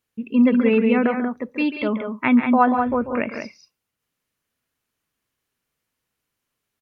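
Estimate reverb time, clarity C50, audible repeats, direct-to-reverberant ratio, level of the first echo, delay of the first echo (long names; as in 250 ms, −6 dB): no reverb audible, no reverb audible, 2, no reverb audible, −10.5 dB, 140 ms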